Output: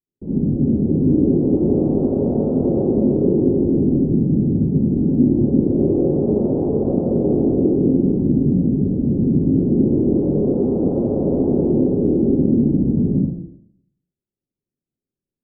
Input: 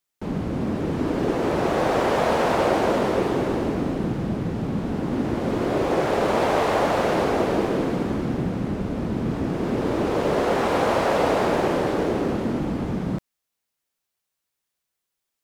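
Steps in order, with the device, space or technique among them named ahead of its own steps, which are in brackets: next room (low-pass 410 Hz 24 dB/octave; reverberation RT60 0.65 s, pre-delay 56 ms, DRR -6 dB)

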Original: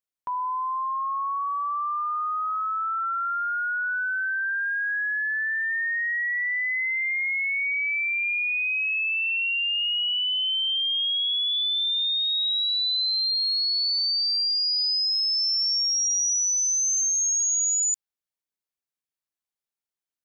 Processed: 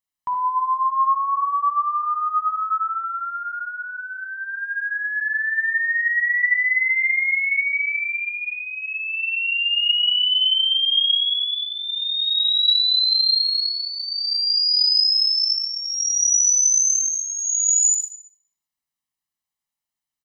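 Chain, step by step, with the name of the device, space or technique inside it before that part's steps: 10.93–11.61 s: tone controls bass +9 dB, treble +8 dB; microphone above a desk (comb 1 ms, depth 58%; reverberation RT60 0.55 s, pre-delay 49 ms, DRR 4.5 dB); trim +1.5 dB

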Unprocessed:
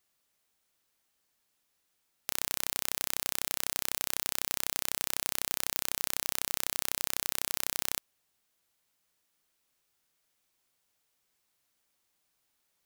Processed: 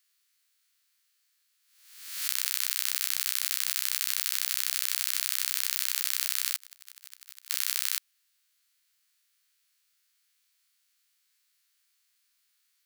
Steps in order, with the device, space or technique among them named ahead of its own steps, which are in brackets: reverse spectral sustain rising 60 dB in 0.91 s; 6.56–7.50 s: gate -31 dBFS, range -32 dB; headphones lying on a table (high-pass 1.4 kHz 24 dB/octave; peaking EQ 4.4 kHz +4.5 dB 0.23 oct); trim +1.5 dB

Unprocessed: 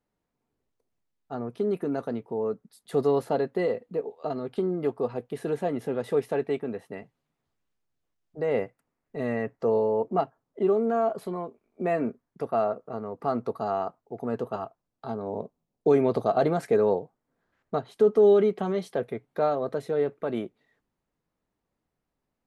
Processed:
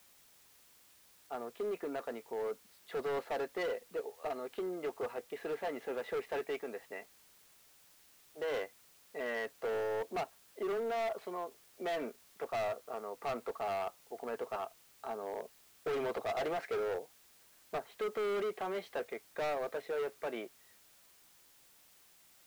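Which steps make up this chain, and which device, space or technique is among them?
16.77–17.94 s: low-pass that closes with the level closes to 730 Hz, closed at -21.5 dBFS; drive-through speaker (band-pass 500–3600 Hz; peaking EQ 2.2 kHz +5 dB 0.77 oct; hard clipper -29 dBFS, distortion -7 dB; white noise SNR 24 dB); trim -3.5 dB

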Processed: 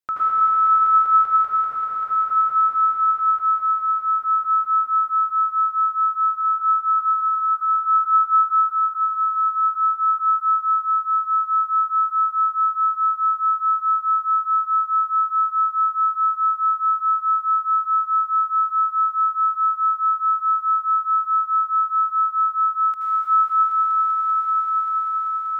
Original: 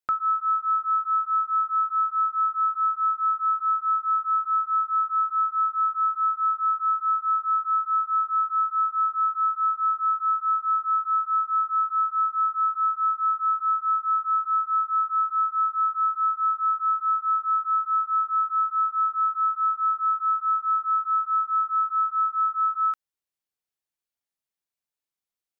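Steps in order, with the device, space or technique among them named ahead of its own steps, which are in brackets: 6.30–6.90 s: distance through air 140 m; cathedral (reverberation RT60 5.8 s, pre-delay 72 ms, DRR -10 dB); echo with a slow build-up 194 ms, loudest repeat 5, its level -7 dB; trim -1 dB

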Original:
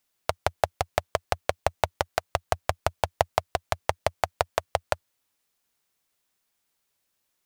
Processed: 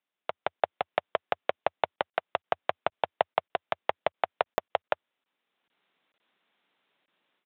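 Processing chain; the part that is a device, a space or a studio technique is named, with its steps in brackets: call with lost packets (high-pass 180 Hz 24 dB/octave; resampled via 8 kHz; level rider gain up to 15 dB; lost packets); trim -7 dB

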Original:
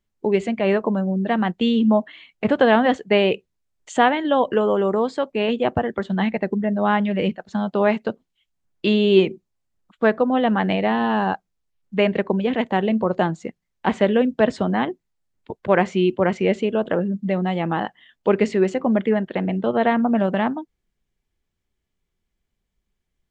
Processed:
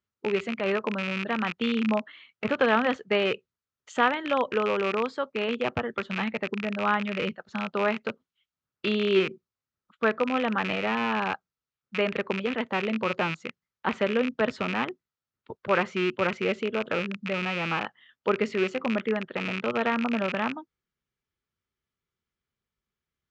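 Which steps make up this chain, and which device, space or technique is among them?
car door speaker with a rattle (rattle on loud lows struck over -30 dBFS, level -15 dBFS; cabinet simulation 87–6600 Hz, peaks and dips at 190 Hz -5 dB, 310 Hz -5 dB, 710 Hz -6 dB, 1.3 kHz +9 dB); trim -6 dB

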